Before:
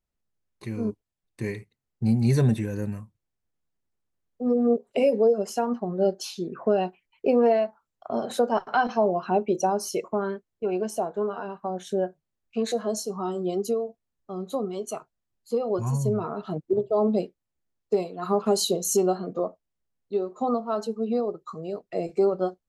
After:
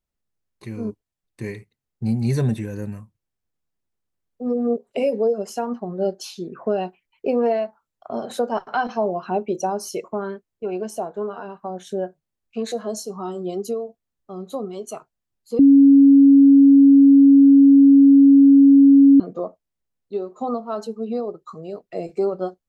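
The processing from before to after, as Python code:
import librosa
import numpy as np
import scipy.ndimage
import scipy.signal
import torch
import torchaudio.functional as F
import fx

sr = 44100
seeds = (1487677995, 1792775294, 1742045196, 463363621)

y = fx.edit(x, sr, fx.bleep(start_s=15.59, length_s=3.61, hz=277.0, db=-7.0), tone=tone)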